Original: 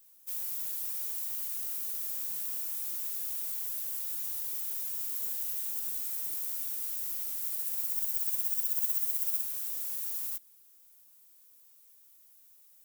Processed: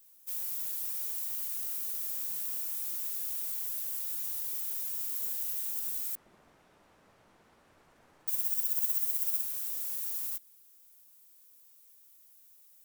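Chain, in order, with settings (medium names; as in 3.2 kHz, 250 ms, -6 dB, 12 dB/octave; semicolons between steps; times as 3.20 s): 6.15–8.28 s: low-pass 1.3 kHz 12 dB/octave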